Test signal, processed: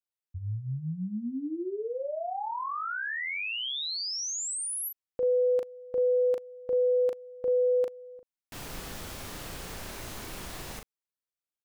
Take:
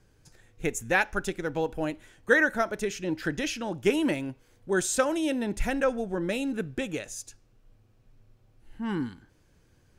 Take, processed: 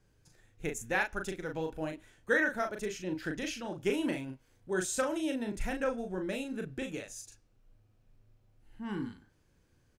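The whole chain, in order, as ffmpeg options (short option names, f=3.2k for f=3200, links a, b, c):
-filter_complex "[0:a]asplit=2[a][b];[b]adelay=38,volume=-5dB[c];[a][c]amix=inputs=2:normalize=0,volume=-7.5dB"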